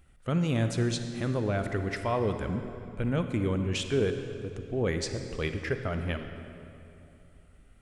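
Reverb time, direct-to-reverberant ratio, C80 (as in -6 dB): 2.8 s, 7.0 dB, 8.5 dB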